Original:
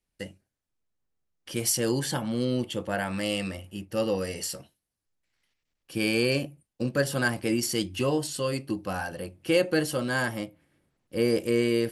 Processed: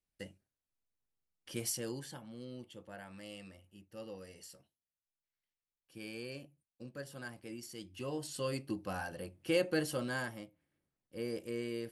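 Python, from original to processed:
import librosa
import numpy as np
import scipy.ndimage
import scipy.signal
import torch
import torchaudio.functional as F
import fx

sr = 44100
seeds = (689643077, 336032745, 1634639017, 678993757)

y = fx.gain(x, sr, db=fx.line((1.57, -9.0), (2.22, -20.0), (7.77, -20.0), (8.43, -8.0), (10.03, -8.0), (10.44, -15.0)))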